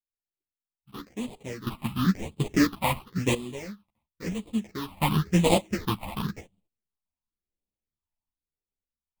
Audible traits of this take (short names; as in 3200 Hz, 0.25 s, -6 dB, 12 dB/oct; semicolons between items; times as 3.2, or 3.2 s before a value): aliases and images of a low sample rate 1500 Hz, jitter 20%; phasing stages 6, 0.95 Hz, lowest notch 410–1600 Hz; random-step tremolo 1.2 Hz, depth 95%; a shimmering, thickened sound